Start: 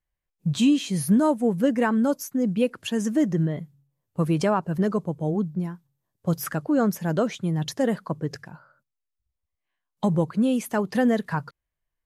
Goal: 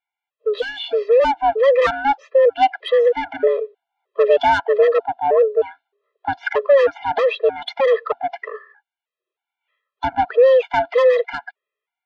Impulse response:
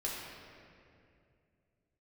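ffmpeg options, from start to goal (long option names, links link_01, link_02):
-af "acontrast=88,highpass=frequency=160:width_type=q:width=0.5412,highpass=frequency=160:width_type=q:width=1.307,lowpass=frequency=3300:width_type=q:width=0.5176,lowpass=frequency=3300:width_type=q:width=0.7071,lowpass=frequency=3300:width_type=q:width=1.932,afreqshift=270,asoftclip=type=tanh:threshold=-13dB,dynaudnorm=framelen=370:gausssize=7:maxgain=5dB,afftfilt=real='re*gt(sin(2*PI*1.6*pts/sr)*(1-2*mod(floor(b*sr/1024/340),2)),0)':imag='im*gt(sin(2*PI*1.6*pts/sr)*(1-2*mod(floor(b*sr/1024/340),2)),0)':win_size=1024:overlap=0.75,volume=2dB"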